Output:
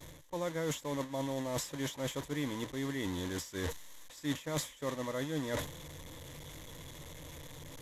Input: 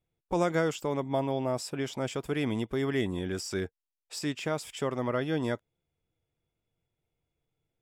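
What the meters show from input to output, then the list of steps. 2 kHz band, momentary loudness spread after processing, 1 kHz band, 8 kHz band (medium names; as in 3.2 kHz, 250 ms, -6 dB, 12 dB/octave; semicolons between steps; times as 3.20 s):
-5.0 dB, 13 LU, -7.0 dB, +1.0 dB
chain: one-bit delta coder 64 kbps, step -31.5 dBFS; expander -28 dBFS; reverse; compression 12:1, threshold -40 dBFS, peak gain reduction 18.5 dB; reverse; rippled EQ curve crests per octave 1.1, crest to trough 8 dB; trim +6 dB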